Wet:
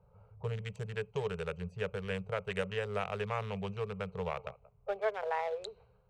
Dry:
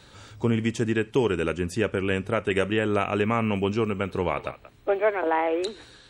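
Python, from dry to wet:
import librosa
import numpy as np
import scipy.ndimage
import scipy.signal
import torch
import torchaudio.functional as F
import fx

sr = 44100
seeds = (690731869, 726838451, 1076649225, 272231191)

y = fx.wiener(x, sr, points=25)
y = fx.env_lowpass(y, sr, base_hz=1300.0, full_db=-23.0)
y = scipy.signal.sosfilt(scipy.signal.ellip(3, 1.0, 40, [190.0, 430.0], 'bandstop', fs=sr, output='sos'), y)
y = y * 10.0 ** (-8.5 / 20.0)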